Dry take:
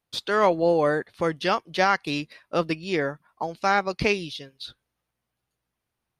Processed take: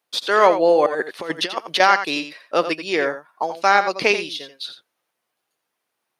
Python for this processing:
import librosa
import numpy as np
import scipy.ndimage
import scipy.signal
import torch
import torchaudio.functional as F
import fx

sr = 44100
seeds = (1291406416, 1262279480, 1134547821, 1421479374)

p1 = scipy.signal.sosfilt(scipy.signal.butter(2, 380.0, 'highpass', fs=sr, output='sos'), x)
p2 = fx.over_compress(p1, sr, threshold_db=-30.0, ratio=-0.5, at=(0.86, 1.8))
p3 = p2 + fx.echo_single(p2, sr, ms=86, db=-10.5, dry=0)
y = F.gain(torch.from_numpy(p3), 6.5).numpy()